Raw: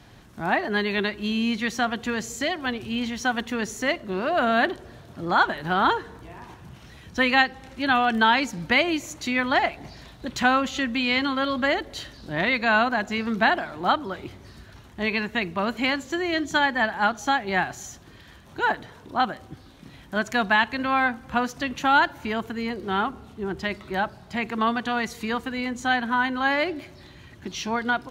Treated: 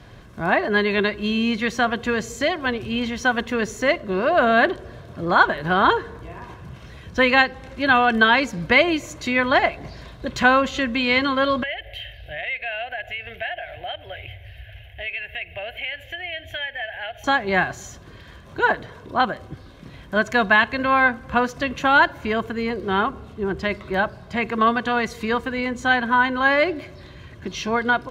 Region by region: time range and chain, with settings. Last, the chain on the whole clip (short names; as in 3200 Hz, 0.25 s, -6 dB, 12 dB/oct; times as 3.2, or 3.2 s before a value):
11.63–17.24 EQ curve 110 Hz 0 dB, 200 Hz -29 dB, 380 Hz -18 dB, 730 Hz +2 dB, 1100 Hz -30 dB, 1700 Hz +2 dB, 3000 Hz +10 dB, 4200 Hz -14 dB, 7600 Hz -19 dB, 12000 Hz +3 dB + compressor 2.5:1, threshold -35 dBFS
whole clip: high shelf 4000 Hz -9 dB; notch 890 Hz, Q 12; comb 1.9 ms, depth 32%; gain +5.5 dB